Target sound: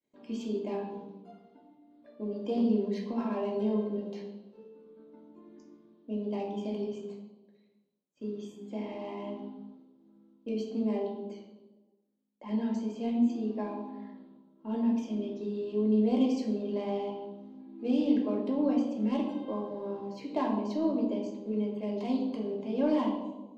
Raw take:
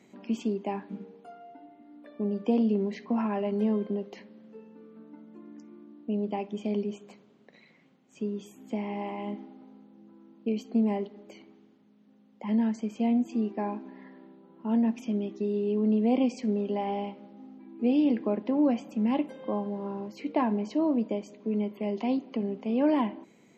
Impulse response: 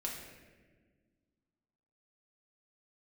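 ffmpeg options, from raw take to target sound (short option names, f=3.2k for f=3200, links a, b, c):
-filter_complex "[0:a]agate=range=-33dB:threshold=-46dB:ratio=3:detection=peak,adynamicsmooth=sensitivity=3:basefreq=3.6k,aexciter=amount=3.8:drive=5.8:freq=3.4k[a];[1:a]atrim=start_sample=2205,asetrate=74970,aresample=44100[b];[a][b]afir=irnorm=-1:irlink=0"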